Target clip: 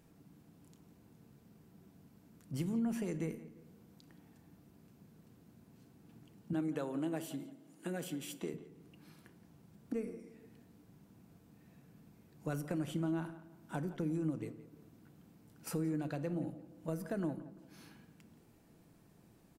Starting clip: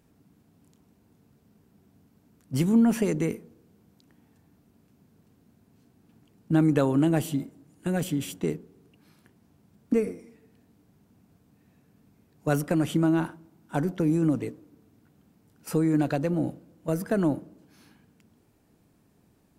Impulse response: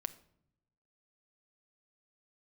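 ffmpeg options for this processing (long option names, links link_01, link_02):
-filter_complex "[0:a]asettb=1/sr,asplit=3[link_01][link_02][link_03];[link_01]atrim=end=6.534[link_04];[link_02]atrim=start=6.53:end=8.54,asetpts=PTS-STARTPTS,afade=type=in:duration=0.004:curve=qsin,afade=type=out:start_time=2.006:duration=0.004:curve=qsin,highpass=240[link_05];[link_03]atrim=start=8.536[link_06];[link_04][link_05]acrossfade=duration=0.004:curve1=hsin:curve2=qsin[link_07];[link_07][link_06]acrossfade=duration=0.004:curve1=qsin:curve2=hsin,acompressor=threshold=-46dB:ratio=2,asplit=2[link_08][link_09];[link_09]adelay=172,lowpass=frequency=3300:poles=1,volume=-15dB,asplit=2[link_10][link_11];[link_11]adelay=172,lowpass=frequency=3300:poles=1,volume=0.34,asplit=2[link_12][link_13];[link_13]adelay=172,lowpass=frequency=3300:poles=1,volume=0.34[link_14];[link_08][link_10][link_12][link_14]amix=inputs=4:normalize=0[link_15];[1:a]atrim=start_sample=2205,atrim=end_sample=6174[link_16];[link_15][link_16]afir=irnorm=-1:irlink=0,volume=1dB"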